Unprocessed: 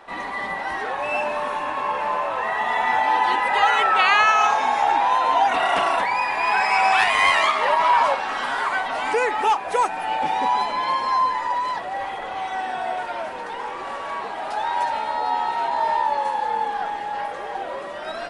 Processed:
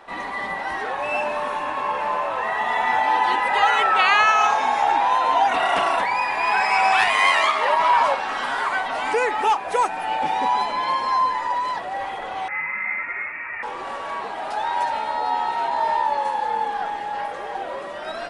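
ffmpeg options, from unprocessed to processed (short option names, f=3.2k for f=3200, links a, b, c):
-filter_complex "[0:a]asettb=1/sr,asplit=3[a][b][c];[a]atrim=end=7.144[d];[b]atrim=start=7.14:end=7.74,asetpts=PTS-STARTPTS,afade=t=in:d=0.004:c=qsin,afade=t=out:st=0.596:d=0.004:c=qsin,highpass=220[e];[c]atrim=start=7.736[f];[d][e]acrossfade=d=0.004:c1=hsin:c2=qsin[g];[g][f]acrossfade=d=0.004:c1=qsin:c2=hsin,asettb=1/sr,asplit=3[h][i][j];[h]atrim=end=12.484[k];[i]atrim=start=12.48:end=13.63,asetpts=PTS-STARTPTS,afade=t=in:d=0.004:c=qsin,afade=t=out:st=1.146:d=0.004:c=qsin,lowpass=f=2.4k:t=q:w=0.5098,lowpass=f=2.4k:t=q:w=0.6013,lowpass=f=2.4k:t=q:w=0.9,lowpass=f=2.4k:t=q:w=2.563,afreqshift=-2800[l];[j]atrim=start=13.626[m];[k][l]acrossfade=d=0.004:c1=hsin:c2=qsin[n];[n][m]acrossfade=d=0.004:c1=qsin:c2=hsin"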